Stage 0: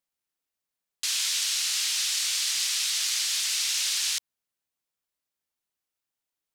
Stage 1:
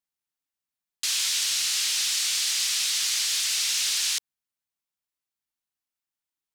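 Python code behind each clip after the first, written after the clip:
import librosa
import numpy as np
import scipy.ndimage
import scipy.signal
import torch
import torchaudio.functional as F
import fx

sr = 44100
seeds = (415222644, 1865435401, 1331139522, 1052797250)

y = fx.peak_eq(x, sr, hz=500.0, db=-8.0, octaves=0.61)
y = fx.leveller(y, sr, passes=1)
y = F.gain(torch.from_numpy(y), -1.5).numpy()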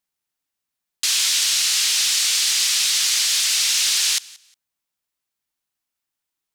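y = fx.echo_feedback(x, sr, ms=179, feedback_pct=22, wet_db=-22.5)
y = F.gain(torch.from_numpy(y), 6.5).numpy()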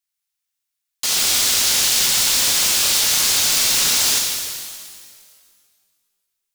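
y = fx.tone_stack(x, sr, knobs='10-0-10')
y = (np.mod(10.0 ** (13.5 / 20.0) * y + 1.0, 2.0) - 1.0) / 10.0 ** (13.5 / 20.0)
y = fx.rev_shimmer(y, sr, seeds[0], rt60_s=1.9, semitones=12, shimmer_db=-8, drr_db=-1.0)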